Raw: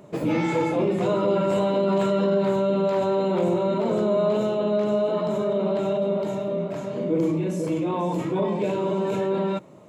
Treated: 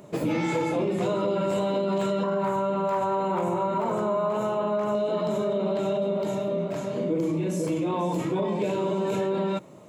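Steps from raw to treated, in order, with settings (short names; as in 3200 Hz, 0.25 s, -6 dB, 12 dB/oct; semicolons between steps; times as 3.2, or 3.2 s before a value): 2.23–4.95 graphic EQ 250/500/1000/4000 Hz -5/-5/+9/-10 dB; compressor, threshold -22 dBFS, peak gain reduction 5 dB; high shelf 4400 Hz +6 dB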